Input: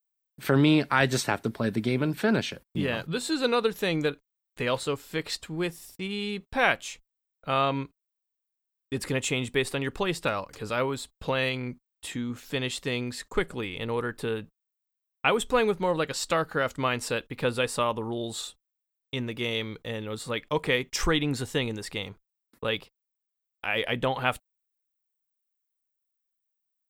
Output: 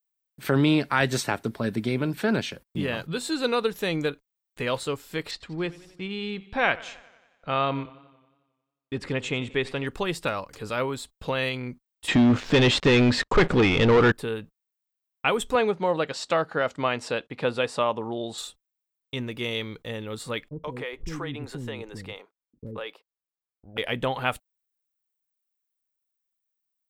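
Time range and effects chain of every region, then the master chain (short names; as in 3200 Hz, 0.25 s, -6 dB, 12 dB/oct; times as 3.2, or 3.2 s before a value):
5.31–9.87 LPF 4200 Hz + warbling echo 90 ms, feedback 61%, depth 79 cents, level -20 dB
12.08–14.12 sample leveller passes 5 + air absorption 150 m
15.55–18.38 BPF 120–5800 Hz + bell 690 Hz +5 dB 0.67 oct
20.49–23.78 high shelf 2700 Hz -11 dB + bands offset in time lows, highs 0.13 s, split 350 Hz + compressor 2.5:1, threshold -31 dBFS
whole clip: dry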